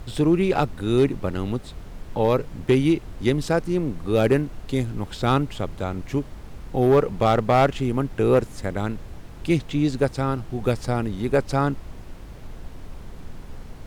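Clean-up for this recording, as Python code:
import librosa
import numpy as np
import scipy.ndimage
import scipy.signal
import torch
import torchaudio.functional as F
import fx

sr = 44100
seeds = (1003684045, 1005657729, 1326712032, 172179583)

y = fx.fix_declip(x, sr, threshold_db=-10.5)
y = fx.noise_reduce(y, sr, print_start_s=11.92, print_end_s=12.42, reduce_db=28.0)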